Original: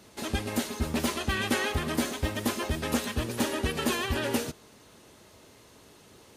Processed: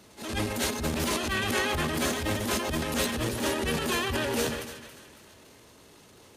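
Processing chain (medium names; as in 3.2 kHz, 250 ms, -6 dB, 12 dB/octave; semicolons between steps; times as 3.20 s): two-band feedback delay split 1.3 kHz, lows 151 ms, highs 276 ms, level -13.5 dB; transient shaper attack -9 dB, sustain +10 dB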